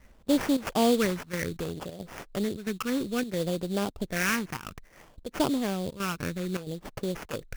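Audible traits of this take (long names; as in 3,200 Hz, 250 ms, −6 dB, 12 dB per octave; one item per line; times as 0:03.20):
phaser sweep stages 6, 0.61 Hz, lowest notch 620–2,100 Hz
aliases and images of a low sample rate 4,000 Hz, jitter 20%
chopped level 1.5 Hz, depth 65%, duty 85%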